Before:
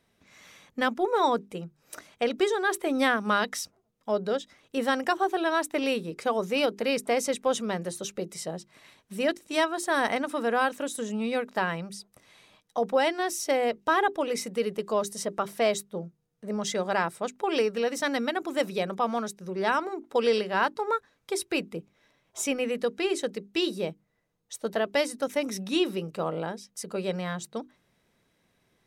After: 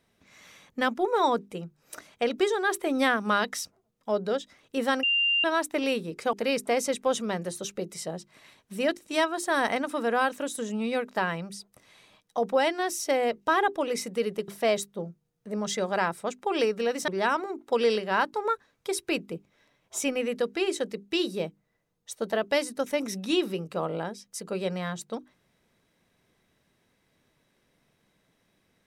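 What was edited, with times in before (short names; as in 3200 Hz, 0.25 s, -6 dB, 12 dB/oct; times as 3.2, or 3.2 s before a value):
5.03–5.44 bleep 2790 Hz -21 dBFS
6.33–6.73 cut
14.88–15.45 cut
18.05–19.51 cut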